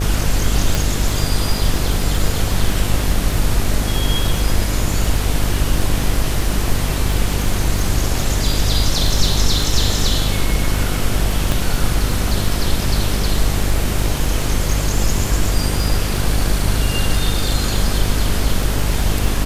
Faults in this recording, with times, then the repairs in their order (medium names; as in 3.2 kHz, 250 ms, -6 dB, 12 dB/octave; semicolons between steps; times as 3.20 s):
buzz 50 Hz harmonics 15 -21 dBFS
crackle 27 per s -21 dBFS
0.75 s: pop
11.52 s: pop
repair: de-click; de-hum 50 Hz, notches 15